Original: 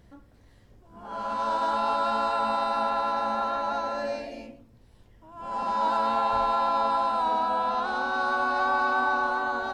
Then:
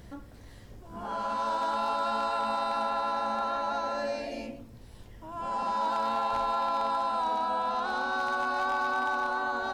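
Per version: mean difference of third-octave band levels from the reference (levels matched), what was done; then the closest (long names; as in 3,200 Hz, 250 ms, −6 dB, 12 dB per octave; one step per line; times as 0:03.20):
3.5 dB: high-shelf EQ 4,600 Hz +4.5 dB
downward compressor 2 to 1, threshold −43 dBFS, peak gain reduction 12 dB
wave folding −28.5 dBFS
level +7 dB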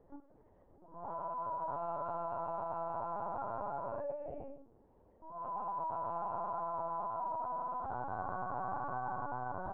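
9.0 dB: Chebyshev band-pass filter 300–900 Hz, order 2
downward compressor 3 to 1, threshold −42 dBFS, peak gain reduction 13.5 dB
linear-prediction vocoder at 8 kHz pitch kept
level +1.5 dB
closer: first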